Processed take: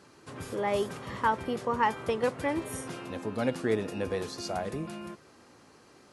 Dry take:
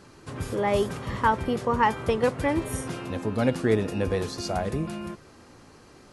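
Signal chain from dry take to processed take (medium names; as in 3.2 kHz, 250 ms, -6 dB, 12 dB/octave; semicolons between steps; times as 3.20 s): high-pass 200 Hz 6 dB/octave; trim -4 dB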